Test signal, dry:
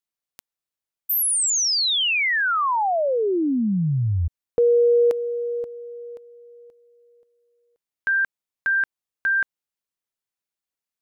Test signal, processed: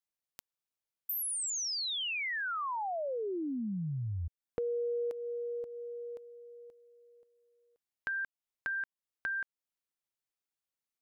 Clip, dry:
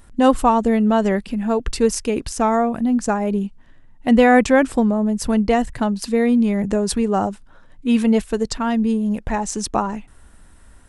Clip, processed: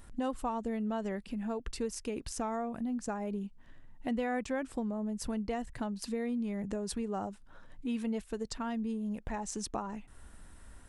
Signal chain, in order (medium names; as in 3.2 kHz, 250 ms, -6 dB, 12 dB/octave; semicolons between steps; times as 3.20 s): compression 2.5:1, threshold -34 dBFS; trim -5 dB